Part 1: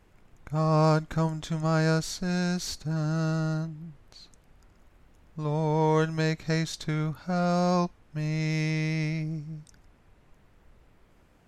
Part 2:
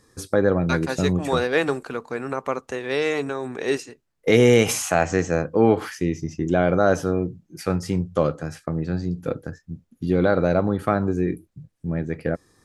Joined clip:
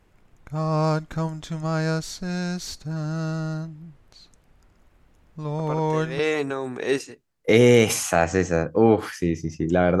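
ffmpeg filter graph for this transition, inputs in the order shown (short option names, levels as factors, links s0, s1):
-filter_complex "[1:a]asplit=2[s0][s1];[0:a]apad=whole_dur=10,atrim=end=10,atrim=end=6.192[s2];[s1]atrim=start=2.978:end=6.79[s3];[s0]atrim=start=2.38:end=2.98,asetpts=PTS-STARTPTS,volume=0.422,afade=t=in:d=0.004:c=hsin,afade=t=out:st=0.596:d=0.004:c=hsin,adelay=5590[s4];[s2][s3]acrossfade=d=0.004:c1=hsin:c2=hsin[s5];[s5][s4]amix=inputs=2:normalize=0"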